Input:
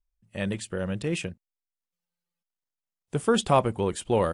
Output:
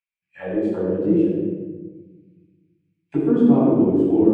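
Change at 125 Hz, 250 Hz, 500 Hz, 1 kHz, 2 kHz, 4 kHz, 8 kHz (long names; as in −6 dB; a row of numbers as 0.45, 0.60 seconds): +3.5 dB, +14.5 dB, +5.5 dB, −5.0 dB, can't be measured, below −15 dB, below −25 dB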